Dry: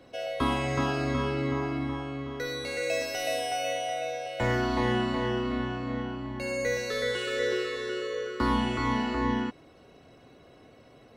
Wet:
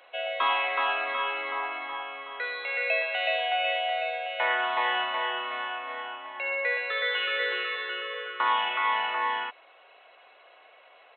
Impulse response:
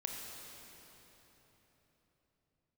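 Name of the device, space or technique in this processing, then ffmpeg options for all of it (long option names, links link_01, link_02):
musical greeting card: -af "aresample=8000,aresample=44100,highpass=frequency=680:width=0.5412,highpass=frequency=680:width=1.3066,equalizer=frequency=2500:width_type=o:width=0.28:gain=5,volume=5.5dB"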